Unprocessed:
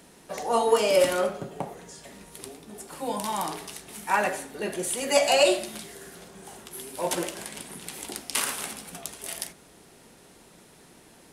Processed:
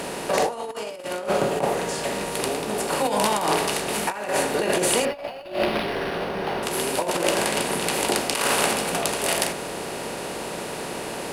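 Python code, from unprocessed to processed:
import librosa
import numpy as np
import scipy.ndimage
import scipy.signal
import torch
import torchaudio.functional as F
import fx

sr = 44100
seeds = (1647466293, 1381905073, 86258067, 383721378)

y = fx.bin_compress(x, sr, power=0.6)
y = fx.high_shelf(y, sr, hz=4900.0, db=-4.0)
y = fx.over_compress(y, sr, threshold_db=-26.0, ratio=-0.5)
y = fx.resample_linear(y, sr, factor=6, at=(5.05, 6.63))
y = y * 10.0 ** (3.5 / 20.0)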